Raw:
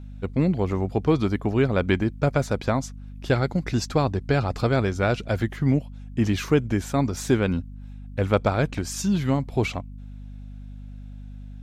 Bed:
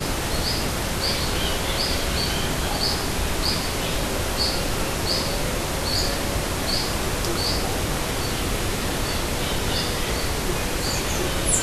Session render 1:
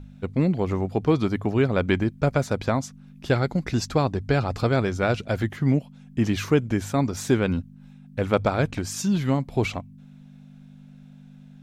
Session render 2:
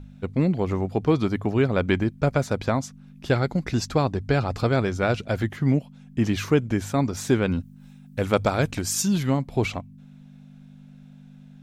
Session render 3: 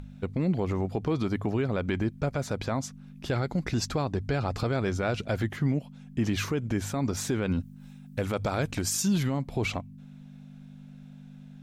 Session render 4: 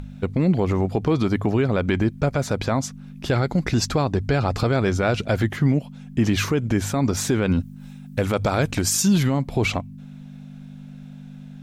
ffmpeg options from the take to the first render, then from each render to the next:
-af "bandreject=f=50:t=h:w=4,bandreject=f=100:t=h:w=4"
-filter_complex "[0:a]asettb=1/sr,asplit=3[a][b][c];[a]atrim=end=7.604[d];[b]atrim=start=7.6:end=9.23,asetpts=PTS-STARTPTS,afade=t=in:d=0.004:c=qsin,afade=t=out:st=1.626:d=0.004:c=qsin,highshelf=f=5.5k:g=11[e];[c]atrim=start=9.226[f];[d][e]acrossfade=d=0.004:c1=hsin:c2=qsin[g];[g][f]acrossfade=d=0.004:c1=qsin:c2=hsin"
-af "alimiter=limit=-18dB:level=0:latency=1:release=88,acompressor=mode=upward:threshold=-48dB:ratio=2.5"
-af "volume=7.5dB"

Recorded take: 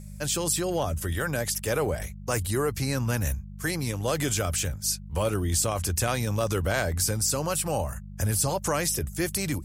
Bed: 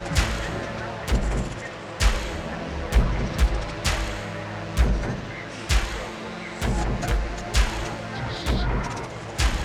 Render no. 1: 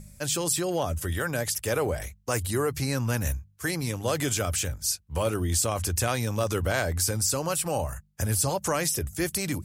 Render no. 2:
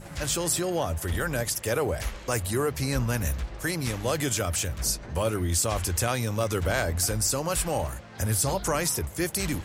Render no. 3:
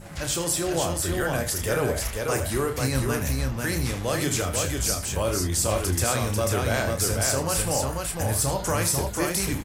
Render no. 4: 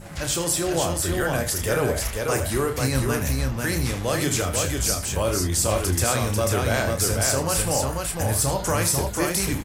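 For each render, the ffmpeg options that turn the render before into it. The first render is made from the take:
-af "bandreject=f=50:t=h:w=4,bandreject=f=100:t=h:w=4,bandreject=f=150:t=h:w=4,bandreject=f=200:t=h:w=4"
-filter_complex "[1:a]volume=-14dB[a];[0:a][a]amix=inputs=2:normalize=0"
-filter_complex "[0:a]asplit=2[a][b];[b]adelay=30,volume=-8dB[c];[a][c]amix=inputs=2:normalize=0,aecho=1:1:79|493:0.266|0.668"
-af "volume=2dB"

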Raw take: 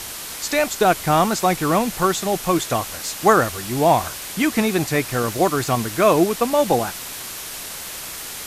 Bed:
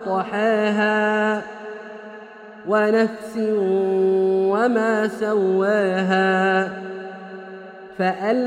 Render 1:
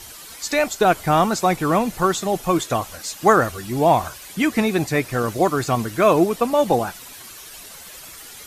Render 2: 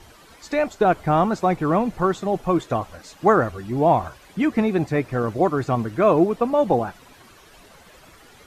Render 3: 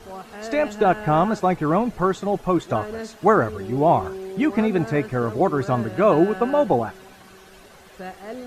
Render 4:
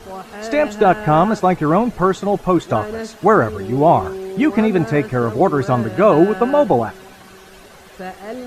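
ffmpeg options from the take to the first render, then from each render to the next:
-af "afftdn=nr=11:nf=-33"
-af "lowpass=f=1.1k:p=1"
-filter_complex "[1:a]volume=-15dB[a];[0:a][a]amix=inputs=2:normalize=0"
-af "volume=5dB,alimiter=limit=-2dB:level=0:latency=1"

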